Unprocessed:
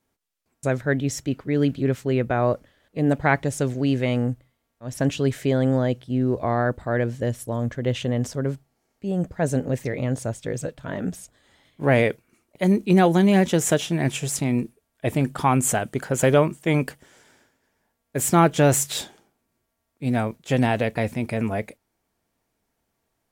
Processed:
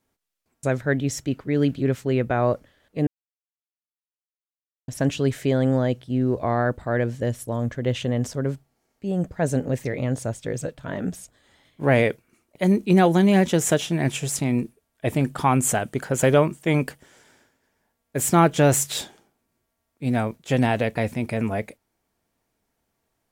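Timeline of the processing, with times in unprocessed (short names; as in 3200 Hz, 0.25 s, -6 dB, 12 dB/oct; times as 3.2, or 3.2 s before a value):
3.07–4.88 mute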